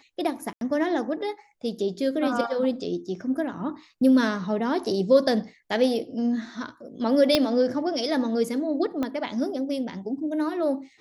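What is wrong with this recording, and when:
0.53–0.61 gap 82 ms
7.35 pop -6 dBFS
9.03 pop -16 dBFS

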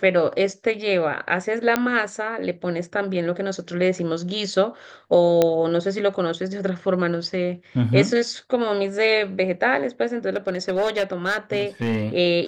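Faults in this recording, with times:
1.76 pop -6 dBFS
5.42 pop -5 dBFS
10.36–12.04 clipped -17 dBFS

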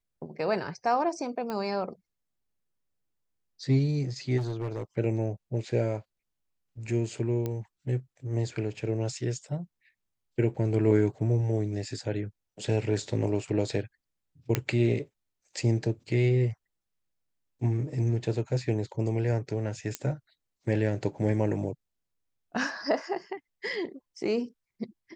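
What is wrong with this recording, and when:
1.5 pop -21 dBFS
4.37–4.83 clipped -28 dBFS
7.46 pop -19 dBFS
14.55 pop -10 dBFS
19.95 pop -14 dBFS

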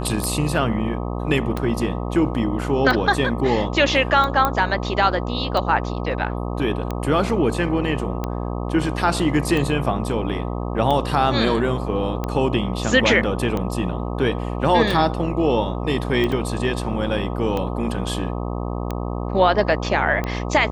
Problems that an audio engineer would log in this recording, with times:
buzz 60 Hz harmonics 21 -26 dBFS
tick 45 rpm -12 dBFS
4.45 pop -6 dBFS
16.32 gap 3.2 ms

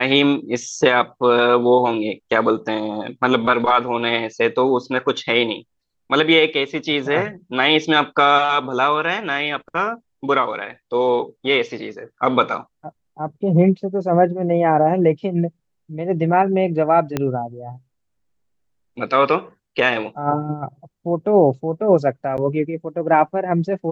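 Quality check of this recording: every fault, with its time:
17.17 pop -7 dBFS
22.37–22.38 gap 9.3 ms

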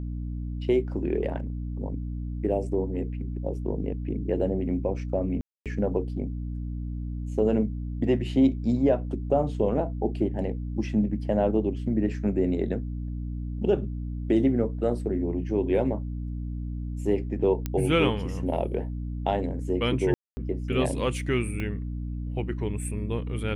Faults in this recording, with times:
hum 60 Hz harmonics 5 -32 dBFS
5.41–5.66 gap 0.247 s
17.66 pop -15 dBFS
20.14–20.37 gap 0.23 s
21.6 pop -20 dBFS

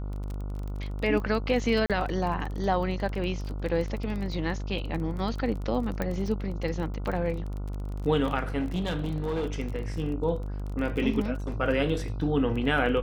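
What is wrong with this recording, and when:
buzz 50 Hz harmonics 29 -33 dBFS
crackle 22/s -33 dBFS
1.86–1.9 gap 37 ms
6.02 pop -16 dBFS
8.59–9.54 clipped -25 dBFS

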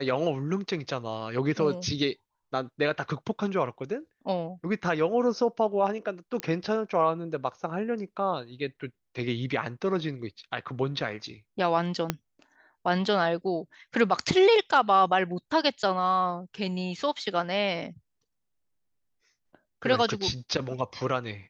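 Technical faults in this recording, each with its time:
6.4 pop -15 dBFS
12.1 pop -10 dBFS

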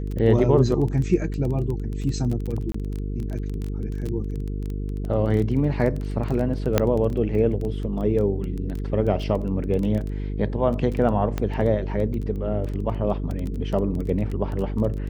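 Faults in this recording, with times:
buzz 50 Hz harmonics 9 -28 dBFS
crackle 15/s -27 dBFS
2.72–2.74 gap 24 ms
6.78 pop -4 dBFS
11.38 pop -13 dBFS

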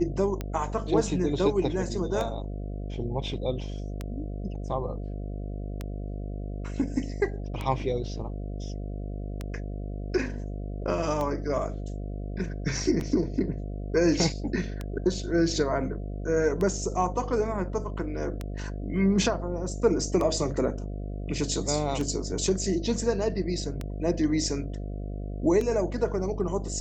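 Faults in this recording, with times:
buzz 50 Hz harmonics 14 -34 dBFS
tick 33 1/3 rpm -18 dBFS
13 gap 4.7 ms

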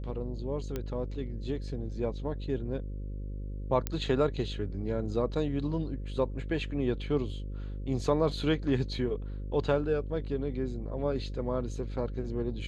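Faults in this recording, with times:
buzz 50 Hz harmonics 11 -37 dBFS
0.76 pop -20 dBFS
3.87 pop -15 dBFS

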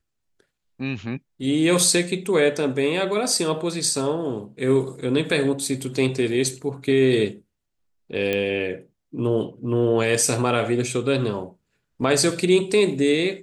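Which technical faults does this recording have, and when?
8.33 pop -11 dBFS

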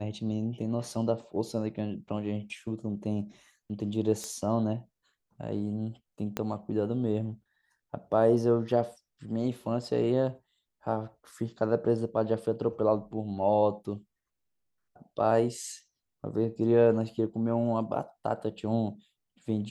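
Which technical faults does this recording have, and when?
4.24 pop -23 dBFS
6.37 pop -15 dBFS

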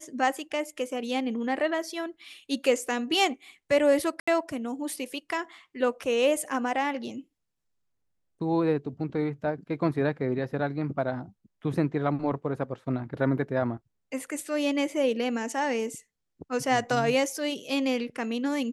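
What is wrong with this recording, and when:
4.2–4.28 gap 75 ms

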